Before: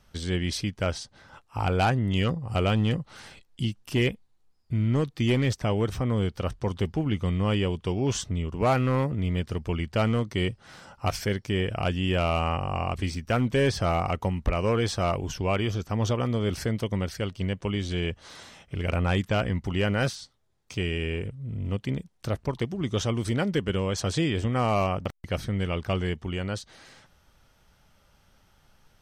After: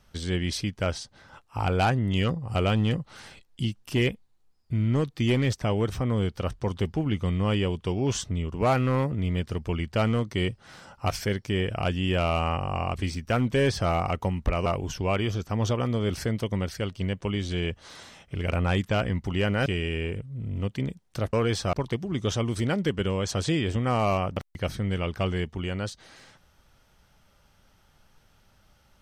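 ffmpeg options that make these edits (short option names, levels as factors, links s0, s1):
-filter_complex "[0:a]asplit=5[s0][s1][s2][s3][s4];[s0]atrim=end=14.662[s5];[s1]atrim=start=15.058:end=20.062[s6];[s2]atrim=start=20.748:end=22.422[s7];[s3]atrim=start=14.658:end=15.062[s8];[s4]atrim=start=22.418[s9];[s5][s6]acrossfade=d=0.004:c1=hsin:c2=hsin[s10];[s10][s7]acrossfade=d=0.004:c1=hsin:c2=hsin[s11];[s11][s8]acrossfade=d=0.004:c1=hsin:c2=hsin[s12];[s12][s9]acrossfade=d=0.004:c1=hsin:c2=hsin"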